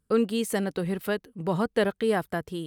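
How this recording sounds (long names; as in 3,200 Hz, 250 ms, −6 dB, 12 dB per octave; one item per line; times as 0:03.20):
background noise floor −76 dBFS
spectral slope −5.0 dB per octave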